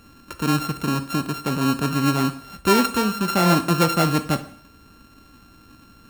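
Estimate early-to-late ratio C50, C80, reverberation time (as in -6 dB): 13.0 dB, 17.0 dB, 0.60 s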